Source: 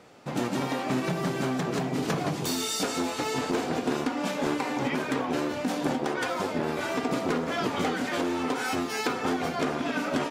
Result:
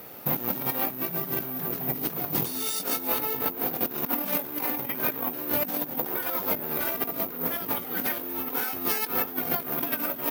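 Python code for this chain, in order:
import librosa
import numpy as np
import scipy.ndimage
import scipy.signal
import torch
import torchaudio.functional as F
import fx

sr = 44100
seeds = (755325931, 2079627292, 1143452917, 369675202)

y = fx.lowpass(x, sr, hz=3100.0, slope=6, at=(3.07, 3.67))
y = fx.over_compress(y, sr, threshold_db=-33.0, ratio=-0.5)
y = (np.kron(scipy.signal.resample_poly(y, 1, 3), np.eye(3)[0]) * 3)[:len(y)]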